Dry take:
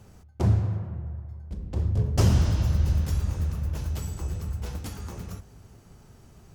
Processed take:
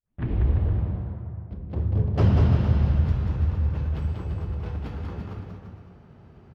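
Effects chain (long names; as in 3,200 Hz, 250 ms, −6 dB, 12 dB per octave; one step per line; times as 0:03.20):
turntable start at the beginning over 0.75 s
high-pass filter 69 Hz
high-frequency loss of the air 370 metres
on a send: bouncing-ball delay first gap 190 ms, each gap 0.8×, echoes 5
on the sum: level +2 dB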